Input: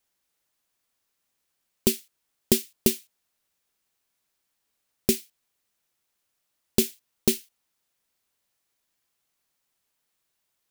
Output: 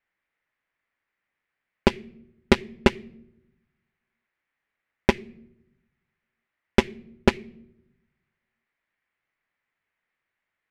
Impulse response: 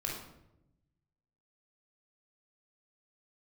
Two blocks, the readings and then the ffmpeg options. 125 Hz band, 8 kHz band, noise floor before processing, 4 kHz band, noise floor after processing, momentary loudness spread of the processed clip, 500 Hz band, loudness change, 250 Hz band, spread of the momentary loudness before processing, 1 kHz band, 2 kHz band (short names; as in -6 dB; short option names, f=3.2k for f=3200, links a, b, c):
+5.0 dB, -15.5 dB, -78 dBFS, -0.5 dB, -84 dBFS, 15 LU, +3.5 dB, +1.5 dB, +3.0 dB, 6 LU, +18.5 dB, +12.0 dB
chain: -filter_complex "[0:a]lowpass=f=2k:t=q:w=3.5,asplit=2[a][b];[1:a]atrim=start_sample=2205,adelay=21[c];[b][c]afir=irnorm=-1:irlink=0,volume=-15.5dB[d];[a][d]amix=inputs=2:normalize=0,aeval=exprs='0.531*(cos(1*acos(clip(val(0)/0.531,-1,1)))-cos(1*PI/2))+0.106*(cos(7*acos(clip(val(0)/0.531,-1,1)))-cos(7*PI/2))':c=same,volume=5dB"